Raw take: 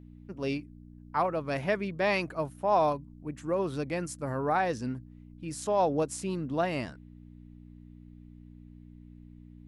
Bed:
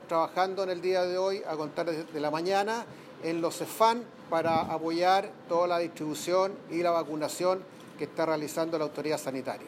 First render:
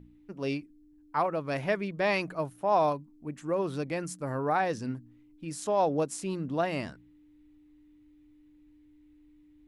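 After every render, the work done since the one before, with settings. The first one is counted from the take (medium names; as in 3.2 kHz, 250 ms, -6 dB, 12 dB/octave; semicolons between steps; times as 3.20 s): de-hum 60 Hz, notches 4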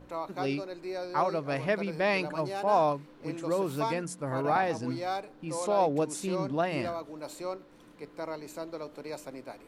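add bed -9 dB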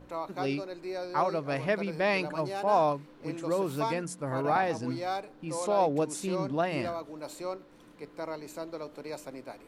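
no audible change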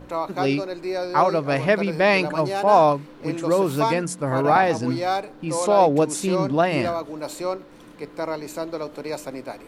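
trim +9.5 dB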